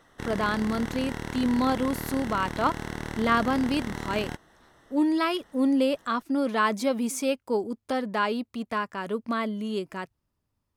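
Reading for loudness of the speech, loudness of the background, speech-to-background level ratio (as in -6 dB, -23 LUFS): -27.5 LUFS, -35.5 LUFS, 8.0 dB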